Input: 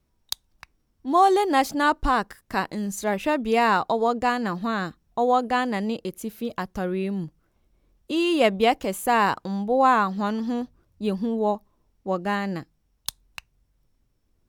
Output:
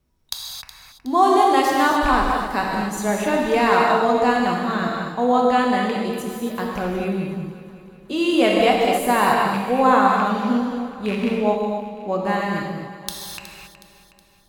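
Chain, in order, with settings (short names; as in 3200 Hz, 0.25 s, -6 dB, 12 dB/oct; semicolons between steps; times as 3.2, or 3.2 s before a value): rattling part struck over -27 dBFS, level -19 dBFS; echo with dull and thin repeats by turns 0.184 s, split 870 Hz, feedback 69%, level -11 dB; non-linear reverb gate 0.3 s flat, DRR -2 dB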